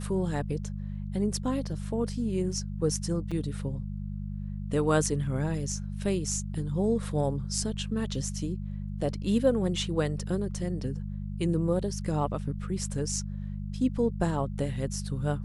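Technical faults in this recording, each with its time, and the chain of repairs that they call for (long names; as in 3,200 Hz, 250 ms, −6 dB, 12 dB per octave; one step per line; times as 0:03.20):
mains hum 50 Hz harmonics 4 −35 dBFS
0:03.31–0:03.32: drop-out 5.3 ms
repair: hum removal 50 Hz, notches 4
repair the gap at 0:03.31, 5.3 ms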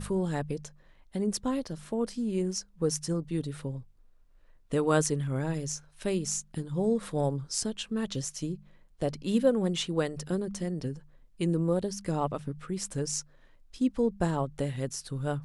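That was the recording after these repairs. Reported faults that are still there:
none of them is left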